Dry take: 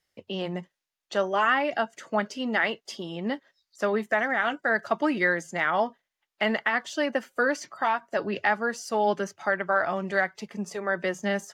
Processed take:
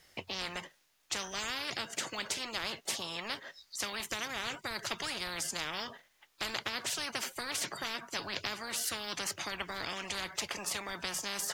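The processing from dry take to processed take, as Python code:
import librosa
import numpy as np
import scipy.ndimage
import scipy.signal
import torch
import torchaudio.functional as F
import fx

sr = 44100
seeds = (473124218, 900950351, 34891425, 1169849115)

y = fx.spectral_comp(x, sr, ratio=10.0)
y = F.gain(torch.from_numpy(y), -5.5).numpy()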